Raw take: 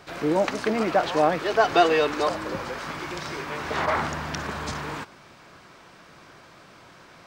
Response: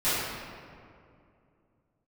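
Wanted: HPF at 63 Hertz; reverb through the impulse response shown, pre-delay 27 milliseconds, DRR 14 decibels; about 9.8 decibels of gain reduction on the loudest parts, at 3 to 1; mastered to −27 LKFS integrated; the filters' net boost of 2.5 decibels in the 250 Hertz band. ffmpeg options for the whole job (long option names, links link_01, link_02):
-filter_complex "[0:a]highpass=63,equalizer=frequency=250:width_type=o:gain=3.5,acompressor=threshold=-27dB:ratio=3,asplit=2[link_01][link_02];[1:a]atrim=start_sample=2205,adelay=27[link_03];[link_02][link_03]afir=irnorm=-1:irlink=0,volume=-28dB[link_04];[link_01][link_04]amix=inputs=2:normalize=0,volume=3.5dB"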